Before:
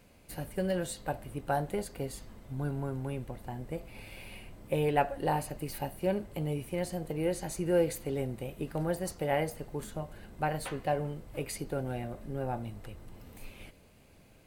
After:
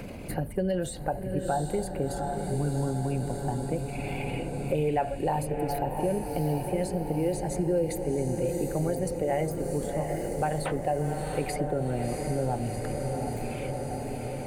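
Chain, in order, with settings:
spectral envelope exaggerated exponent 1.5
in parallel at −1.5 dB: brickwall limiter −28 dBFS, peak gain reduction 11.5 dB
on the sum: feedback delay with all-pass diffusion 715 ms, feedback 65%, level −7.5 dB
multiband upward and downward compressor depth 70%

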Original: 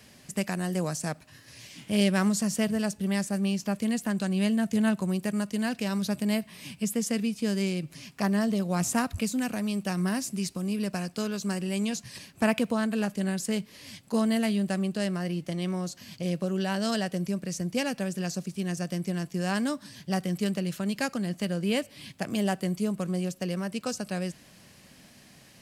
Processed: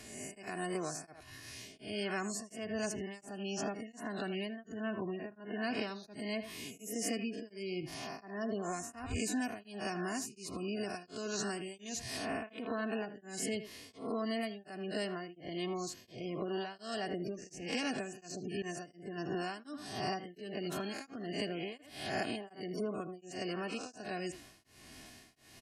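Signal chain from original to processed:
peak hold with a rise ahead of every peak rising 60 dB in 0.72 s
0:04.95–0:05.63: high-shelf EQ 3,800 Hz −8.5 dB
gate on every frequency bin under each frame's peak −30 dB strong
far-end echo of a speakerphone 80 ms, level −13 dB
downward compressor 5 to 1, threshold −29 dBFS, peak gain reduction 11 dB
comb filter 2.8 ms, depth 62%
0:18.62–0:19.18: downward expander −32 dBFS
tremolo along a rectified sine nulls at 1.4 Hz
level −2 dB

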